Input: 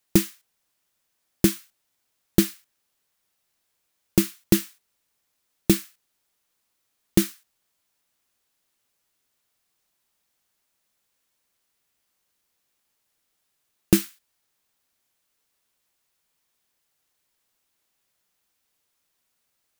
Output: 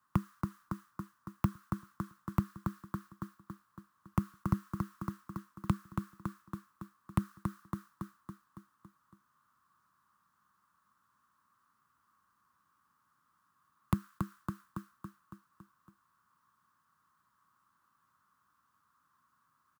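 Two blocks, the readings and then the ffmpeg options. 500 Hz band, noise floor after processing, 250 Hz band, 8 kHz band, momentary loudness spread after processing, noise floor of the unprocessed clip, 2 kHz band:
-20.5 dB, -76 dBFS, -12.0 dB, -26.5 dB, 17 LU, -76 dBFS, -12.5 dB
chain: -filter_complex "[0:a]acompressor=threshold=-25dB:ratio=4,firequalizer=gain_entry='entry(190,0);entry(730,-13);entry(1100,12);entry(2200,-19)':delay=0.05:min_phase=1,aecho=1:1:279|558|837|1116|1395|1674|1953:0.422|0.232|0.128|0.0702|0.0386|0.0212|0.0117,acrossover=split=150[a][b];[b]acompressor=threshold=-41dB:ratio=6[c];[a][c]amix=inputs=2:normalize=0,highpass=98,equalizer=f=440:w=1.4:g=-11,volume=8.5dB"

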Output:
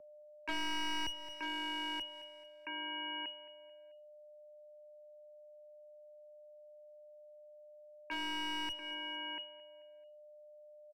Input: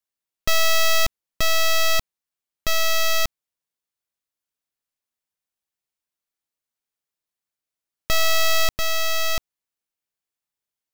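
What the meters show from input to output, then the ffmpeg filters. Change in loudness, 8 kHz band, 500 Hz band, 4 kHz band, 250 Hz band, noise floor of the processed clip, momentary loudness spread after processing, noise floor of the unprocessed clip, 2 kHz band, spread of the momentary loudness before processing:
-17.5 dB, -27.0 dB, -20.5 dB, -13.5 dB, +1.0 dB, -57 dBFS, 21 LU, under -85 dBFS, -16.5 dB, 7 LU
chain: -filter_complex "[0:a]agate=range=-26dB:threshold=-16dB:ratio=16:detection=peak,lowshelf=f=400:g=-8,lowpass=f=2.5k:t=q:w=0.5098,lowpass=f=2.5k:t=q:w=0.6013,lowpass=f=2.5k:t=q:w=0.9,lowpass=f=2.5k:t=q:w=2.563,afreqshift=-2900,aeval=exprs='val(0)+0.000562*sin(2*PI*600*n/s)':c=same,aeval=exprs='clip(val(0),-1,0.00708)':c=same,aecho=1:1:219|438|657:0.1|0.042|0.0176,acrossover=split=270|1100[a][b][c];[a]acompressor=threshold=-51dB:ratio=4[d];[b]acompressor=threshold=-56dB:ratio=4[e];[c]acompressor=threshold=-53dB:ratio=4[f];[d][e][f]amix=inputs=3:normalize=0,volume=11.5dB"

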